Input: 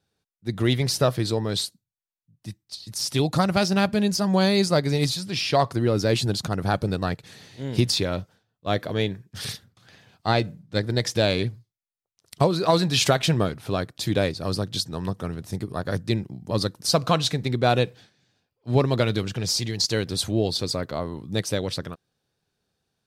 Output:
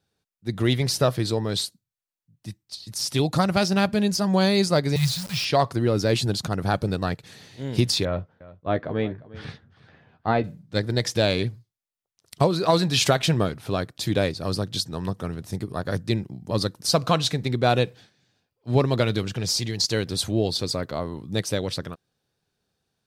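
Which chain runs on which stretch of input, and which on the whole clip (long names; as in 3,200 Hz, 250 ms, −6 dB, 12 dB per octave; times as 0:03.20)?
0:04.96–0:05.45: Chebyshev band-stop filter 170–1,000 Hz, order 3 + low-shelf EQ 480 Hz +3.5 dB + bit-depth reduction 6 bits, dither none
0:08.05–0:10.44: low-pass filter 1,800 Hz + double-tracking delay 13 ms −8.5 dB + single-tap delay 353 ms −19 dB
whole clip: no processing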